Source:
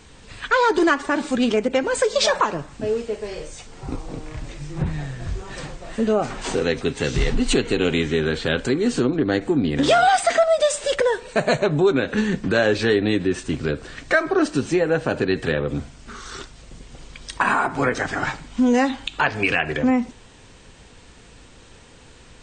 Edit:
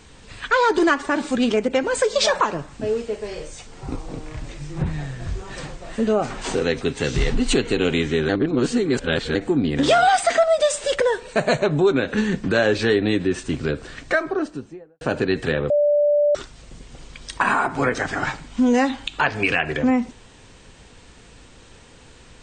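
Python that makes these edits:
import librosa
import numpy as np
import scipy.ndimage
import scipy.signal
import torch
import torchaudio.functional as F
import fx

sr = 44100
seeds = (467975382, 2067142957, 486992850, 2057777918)

y = fx.studio_fade_out(x, sr, start_s=13.89, length_s=1.12)
y = fx.edit(y, sr, fx.reverse_span(start_s=8.29, length_s=1.06),
    fx.bleep(start_s=15.7, length_s=0.65, hz=587.0, db=-14.0), tone=tone)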